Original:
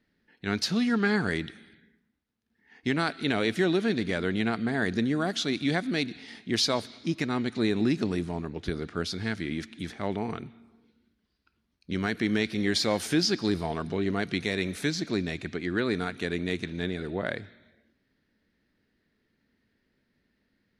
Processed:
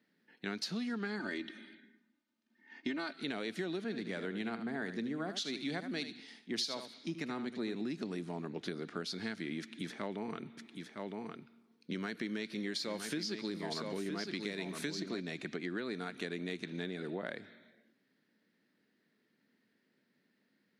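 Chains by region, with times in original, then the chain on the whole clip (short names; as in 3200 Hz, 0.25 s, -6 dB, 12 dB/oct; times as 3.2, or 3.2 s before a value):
1.19–3.14 LPF 6300 Hz + comb 3.3 ms, depth 91%
3.84–7.75 echo 78 ms -10 dB + three-band expander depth 70%
9.61–15.2 notch 750 Hz, Q 8.3 + echo 0.961 s -7.5 dB
whole clip: HPF 160 Hz 24 dB/oct; dynamic EQ 4300 Hz, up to +4 dB, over -49 dBFS, Q 7.4; compressor 5:1, threshold -34 dBFS; gain -2 dB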